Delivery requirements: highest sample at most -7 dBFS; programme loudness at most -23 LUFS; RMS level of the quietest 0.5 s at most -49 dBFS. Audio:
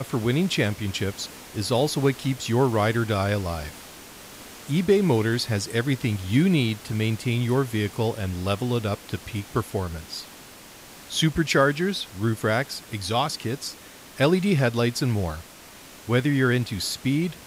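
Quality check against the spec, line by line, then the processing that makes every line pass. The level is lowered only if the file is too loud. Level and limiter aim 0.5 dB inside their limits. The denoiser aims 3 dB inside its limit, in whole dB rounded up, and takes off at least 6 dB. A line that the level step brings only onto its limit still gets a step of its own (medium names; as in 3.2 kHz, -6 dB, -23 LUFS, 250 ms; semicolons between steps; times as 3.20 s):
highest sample -7.5 dBFS: pass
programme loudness -24.5 LUFS: pass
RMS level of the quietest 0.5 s -46 dBFS: fail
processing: noise reduction 6 dB, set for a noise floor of -46 dBFS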